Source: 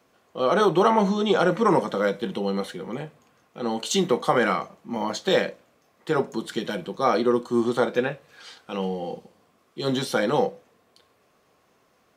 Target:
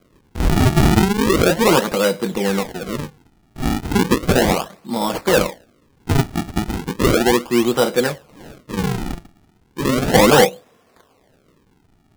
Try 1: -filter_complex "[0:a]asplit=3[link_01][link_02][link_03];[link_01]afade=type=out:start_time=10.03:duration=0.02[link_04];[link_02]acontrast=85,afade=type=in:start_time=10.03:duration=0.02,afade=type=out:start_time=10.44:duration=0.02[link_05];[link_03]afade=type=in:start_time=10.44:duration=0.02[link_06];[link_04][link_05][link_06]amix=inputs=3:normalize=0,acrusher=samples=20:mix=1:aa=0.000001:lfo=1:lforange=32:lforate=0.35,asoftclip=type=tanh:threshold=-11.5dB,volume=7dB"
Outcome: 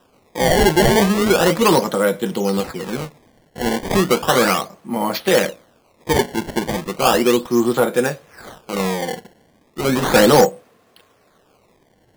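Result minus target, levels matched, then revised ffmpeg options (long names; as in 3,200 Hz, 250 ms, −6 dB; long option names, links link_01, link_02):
sample-and-hold swept by an LFO: distortion −8 dB
-filter_complex "[0:a]asplit=3[link_01][link_02][link_03];[link_01]afade=type=out:start_time=10.03:duration=0.02[link_04];[link_02]acontrast=85,afade=type=in:start_time=10.03:duration=0.02,afade=type=out:start_time=10.44:duration=0.02[link_05];[link_03]afade=type=in:start_time=10.44:duration=0.02[link_06];[link_04][link_05][link_06]amix=inputs=3:normalize=0,acrusher=samples=48:mix=1:aa=0.000001:lfo=1:lforange=76.8:lforate=0.35,asoftclip=type=tanh:threshold=-11.5dB,volume=7dB"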